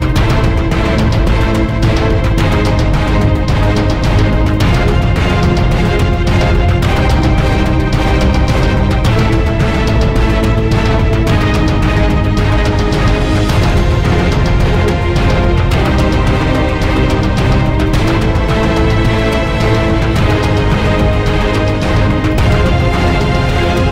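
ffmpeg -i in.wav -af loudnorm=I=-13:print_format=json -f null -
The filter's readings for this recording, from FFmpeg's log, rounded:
"input_i" : "-12.3",
"input_tp" : "-1.2",
"input_lra" : "0.4",
"input_thresh" : "-22.3",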